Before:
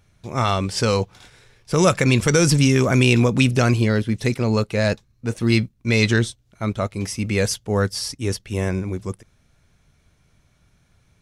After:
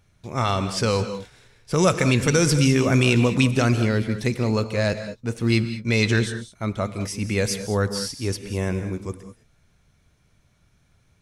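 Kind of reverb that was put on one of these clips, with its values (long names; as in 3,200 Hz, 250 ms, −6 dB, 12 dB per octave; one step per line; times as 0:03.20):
reverb whose tail is shaped and stops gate 230 ms rising, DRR 10 dB
level −2.5 dB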